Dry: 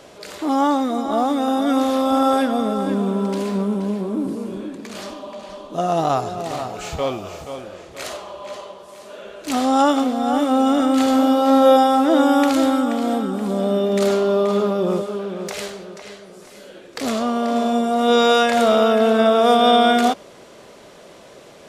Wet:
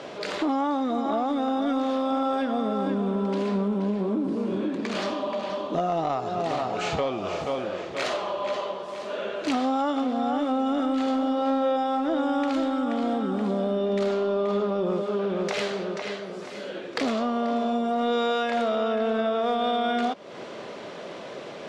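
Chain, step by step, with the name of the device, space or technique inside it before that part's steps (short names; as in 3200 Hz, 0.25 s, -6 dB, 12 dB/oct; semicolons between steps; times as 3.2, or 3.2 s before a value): AM radio (BPF 140–4100 Hz; compressor 6:1, threshold -29 dBFS, peak gain reduction 18 dB; soft clip -20 dBFS, distortion -27 dB); gain +6 dB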